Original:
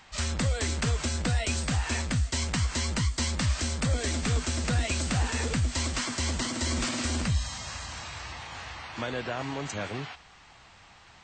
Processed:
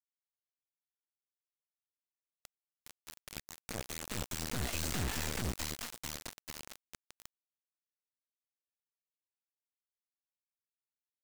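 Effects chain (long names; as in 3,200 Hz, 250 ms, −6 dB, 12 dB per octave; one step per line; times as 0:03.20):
source passing by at 0:05.02, 12 m/s, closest 4.5 metres
tube saturation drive 36 dB, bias 0.4
bit-depth reduction 6 bits, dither none
level +1 dB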